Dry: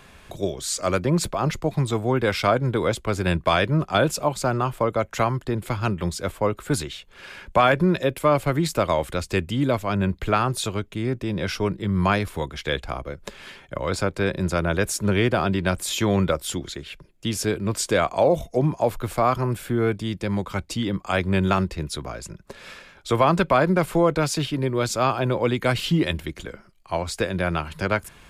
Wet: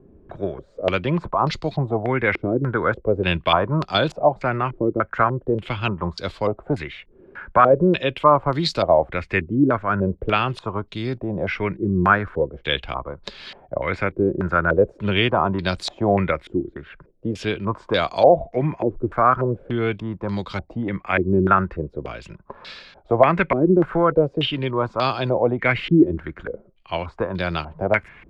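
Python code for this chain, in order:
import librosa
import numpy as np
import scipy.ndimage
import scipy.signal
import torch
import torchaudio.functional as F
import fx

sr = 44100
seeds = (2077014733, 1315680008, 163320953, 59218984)

y = fx.filter_held_lowpass(x, sr, hz=3.4, low_hz=350.0, high_hz=4300.0)
y = F.gain(torch.from_numpy(y), -1.0).numpy()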